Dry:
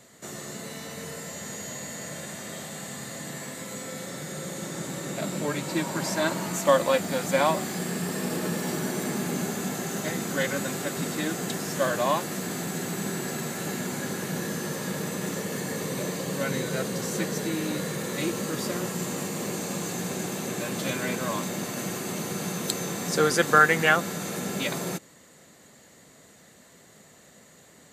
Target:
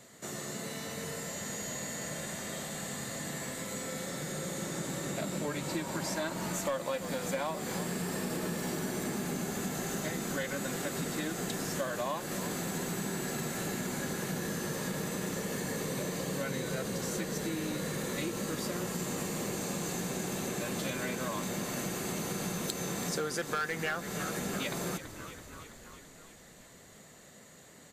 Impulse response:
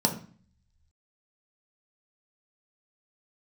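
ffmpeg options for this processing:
-filter_complex "[0:a]asoftclip=type=hard:threshold=-13.5dB,asplit=8[a][b][c][d][e][f][g][h];[b]adelay=331,afreqshift=-43,volume=-16.5dB[i];[c]adelay=662,afreqshift=-86,volume=-20.2dB[j];[d]adelay=993,afreqshift=-129,volume=-24dB[k];[e]adelay=1324,afreqshift=-172,volume=-27.7dB[l];[f]adelay=1655,afreqshift=-215,volume=-31.5dB[m];[g]adelay=1986,afreqshift=-258,volume=-35.2dB[n];[h]adelay=2317,afreqshift=-301,volume=-39dB[o];[a][i][j][k][l][m][n][o]amix=inputs=8:normalize=0,acompressor=threshold=-30dB:ratio=5,volume=-1.5dB"

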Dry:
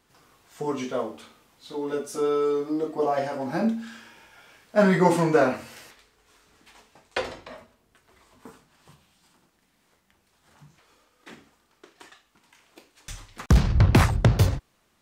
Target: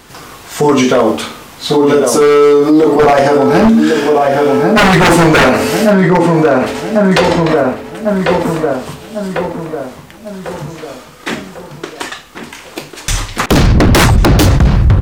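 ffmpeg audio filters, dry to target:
-filter_complex "[0:a]asplit=2[a][b];[b]adelay=1097,lowpass=f=2.1k:p=1,volume=-8dB,asplit=2[c][d];[d]adelay=1097,lowpass=f=2.1k:p=1,volume=0.48,asplit=2[e][f];[f]adelay=1097,lowpass=f=2.1k:p=1,volume=0.48,asplit=2[g][h];[h]adelay=1097,lowpass=f=2.1k:p=1,volume=0.48,asplit=2[i][j];[j]adelay=1097,lowpass=f=2.1k:p=1,volume=0.48,asplit=2[k][l];[l]adelay=1097,lowpass=f=2.1k:p=1,volume=0.48[m];[a][c][e][g][i][k][m]amix=inputs=7:normalize=0,aeval=exprs='0.106*(abs(mod(val(0)/0.106+3,4)-2)-1)':c=same,alimiter=level_in=27.5dB:limit=-1dB:release=50:level=0:latency=1,volume=-1dB"

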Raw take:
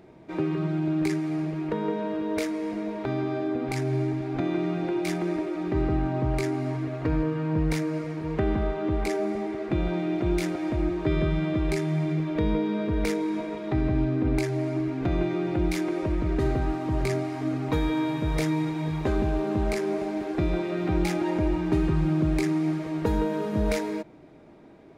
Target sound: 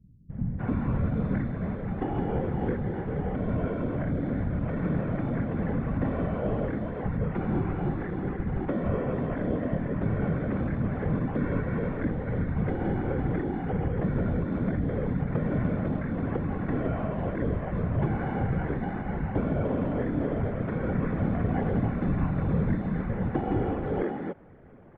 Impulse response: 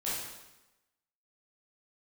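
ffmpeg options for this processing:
-filter_complex "[0:a]acrossover=split=720[a][b];[b]alimiter=level_in=6dB:limit=-24dB:level=0:latency=1:release=288,volume=-6dB[c];[a][c]amix=inputs=2:normalize=0,acrusher=samples=11:mix=1:aa=0.000001,highpass=f=230:t=q:w=0.5412,highpass=f=230:t=q:w=1.307,lowpass=f=2.2k:t=q:w=0.5176,lowpass=f=2.2k:t=q:w=0.7071,lowpass=f=2.2k:t=q:w=1.932,afreqshift=-160,afftfilt=real='hypot(re,im)*cos(2*PI*random(0))':imag='hypot(re,im)*sin(2*PI*random(1))':win_size=512:overlap=0.75,acrossover=split=190[d][e];[e]adelay=300[f];[d][f]amix=inputs=2:normalize=0,volume=8.5dB"

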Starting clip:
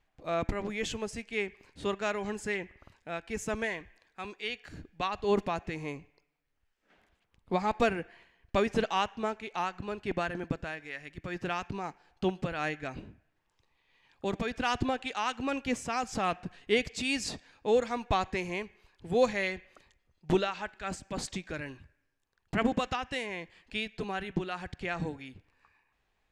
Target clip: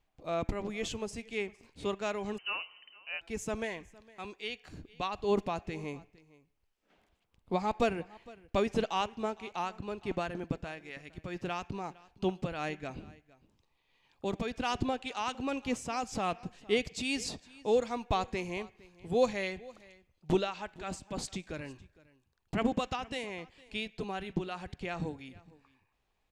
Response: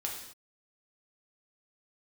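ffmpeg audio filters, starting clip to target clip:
-filter_complex "[0:a]equalizer=f=1.7k:w=2:g=-6.5,asplit=2[a][b];[b]aecho=0:1:459:0.0794[c];[a][c]amix=inputs=2:normalize=0,asettb=1/sr,asplit=3[d][e][f];[d]atrim=end=2.384[g];[e]atrim=start=2.38:end=3.21,asetpts=PTS-STARTPTS,afade=t=in:d=0.004:c=qsin,afade=t=out:st=0.826:d=0.004:c=qsin,lowpass=f=2.6k:t=q:w=0.5098,lowpass=f=2.6k:t=q:w=0.6013,lowpass=f=2.6k:t=q:w=0.9,lowpass=f=2.6k:t=q:w=2.563,afreqshift=-3100[h];[f]atrim=start=3.206[i];[g][h]acrossfade=d=0.004:c1=hsin:c2=qsin[j];[j][i]acrossfade=d=0.004:c1=qsin:c2=hsin,volume=-1.5dB"

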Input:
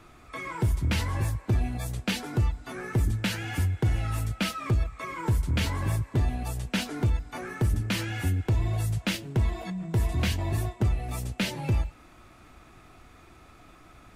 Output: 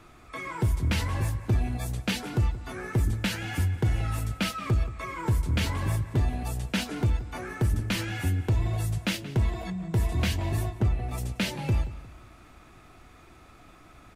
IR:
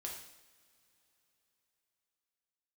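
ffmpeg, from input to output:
-filter_complex "[0:a]asettb=1/sr,asplit=3[a][b][c];[a]atrim=end=10.714[d];[b]atrim=start=10.71:end=11.18,asetpts=PTS-STARTPTS,afade=t=in:d=0.004:c=qsin,afade=t=out:st=0.466:d=0.004:c=qsin,highshelf=f=4.4k:g=-8[e];[c]atrim=start=11.176[f];[d][e]acrossfade=d=0.004:c1=hsin:c2=qsin[g];[g][f]acrossfade=d=0.004:c1=qsin:c2=hsin,asplit=2[h][i];[i]adelay=178,lowpass=f=4.7k:p=1,volume=-15.5dB,asplit=2[j][k];[k]adelay=178,lowpass=f=4.7k:p=1,volume=0.39,asplit=2[l][m];[m]adelay=178,lowpass=f=4.7k:p=1,volume=0.39[n];[h][j][l][n]amix=inputs=4:normalize=0"

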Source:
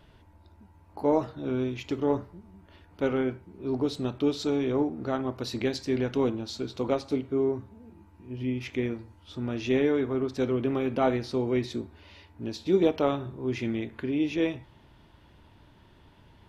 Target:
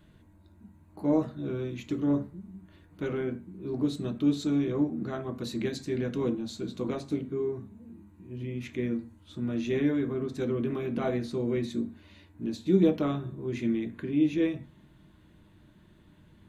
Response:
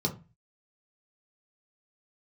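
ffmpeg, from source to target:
-filter_complex "[0:a]highshelf=f=5.8k:g=6,asplit=2[a][b];[1:a]atrim=start_sample=2205,asetrate=57330,aresample=44100[c];[b][c]afir=irnorm=-1:irlink=0,volume=-9.5dB[d];[a][d]amix=inputs=2:normalize=0,volume=-4.5dB"

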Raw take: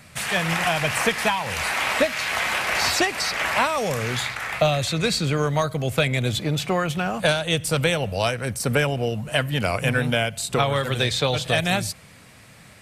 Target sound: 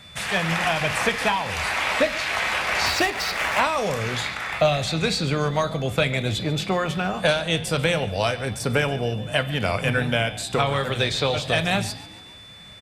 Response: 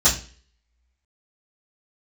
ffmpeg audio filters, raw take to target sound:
-filter_complex "[0:a]highshelf=f=10k:g=-11,asplit=5[a][b][c][d][e];[b]adelay=142,afreqshift=47,volume=-18.5dB[f];[c]adelay=284,afreqshift=94,volume=-24.2dB[g];[d]adelay=426,afreqshift=141,volume=-29.9dB[h];[e]adelay=568,afreqshift=188,volume=-35.5dB[i];[a][f][g][h][i]amix=inputs=5:normalize=0,aeval=exprs='val(0)+0.00398*sin(2*PI*3500*n/s)':c=same,asettb=1/sr,asplit=3[j][k][l];[j]atrim=end=2.864[m];[k]atrim=start=2.86:end=3.6,asetpts=PTS-STARTPTS,afade=t=in:d=0.004:c=qsin,afade=t=out:st=0.736:d=0.004:c=qsin,adynamicsmooth=sensitivity=7:basefreq=890[n];[l]atrim=start=3.596[o];[m][n]acrossfade=d=0.004:c1=hsin:c2=qsin[p];[p][o]acrossfade=d=0.004:c1=qsin:c2=hsin,asplit=2[q][r];[1:a]atrim=start_sample=2205,asetrate=29988,aresample=44100[s];[r][s]afir=irnorm=-1:irlink=0,volume=-31dB[t];[q][t]amix=inputs=2:normalize=0"

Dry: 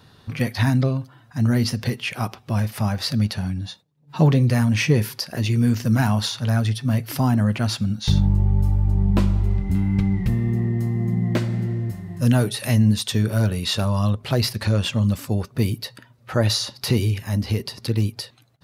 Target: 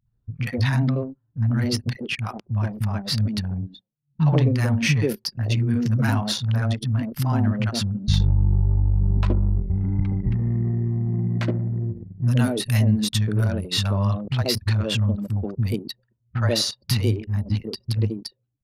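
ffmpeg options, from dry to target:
-filter_complex "[0:a]acrossover=split=200|720[a][b][c];[c]adelay=60[d];[b]adelay=130[e];[a][e][d]amix=inputs=3:normalize=0,anlmdn=100"

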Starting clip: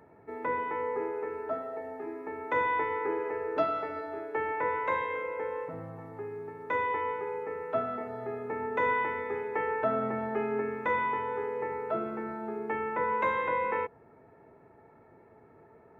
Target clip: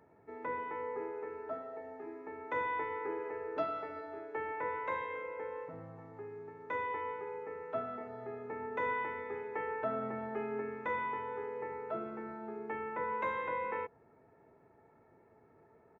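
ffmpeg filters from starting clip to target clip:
-af "aresample=16000,aresample=44100,volume=-7dB"

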